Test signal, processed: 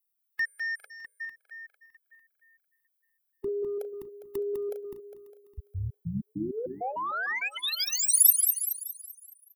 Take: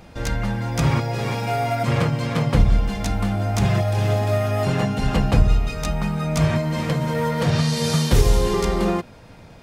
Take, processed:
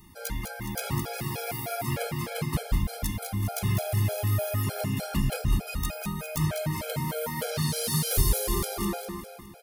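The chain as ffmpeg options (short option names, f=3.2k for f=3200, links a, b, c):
-filter_complex "[0:a]highshelf=f=4.2k:g=8.5,bandreject=f=60:t=h:w=6,bandreject=f=120:t=h:w=6,bandreject=f=180:t=h:w=6,bandreject=f=240:t=h:w=6,bandreject=f=300:t=h:w=6,bandreject=f=360:t=h:w=6,bandreject=f=420:t=h:w=6,bandreject=f=480:t=h:w=6,bandreject=f=540:t=h:w=6,acrossover=split=430[a][b];[b]asoftclip=type=tanh:threshold=-14.5dB[c];[a][c]amix=inputs=2:normalize=0,aexciter=amount=4.7:drive=4.7:freq=9.5k,asplit=2[d][e];[e]aecho=0:1:203|406|609|812|1015|1218:0.501|0.231|0.106|0.0488|0.0224|0.0103[f];[d][f]amix=inputs=2:normalize=0,afftfilt=real='re*gt(sin(2*PI*3.3*pts/sr)*(1-2*mod(floor(b*sr/1024/430),2)),0)':imag='im*gt(sin(2*PI*3.3*pts/sr)*(1-2*mod(floor(b*sr/1024/430),2)),0)':win_size=1024:overlap=0.75,volume=-7dB"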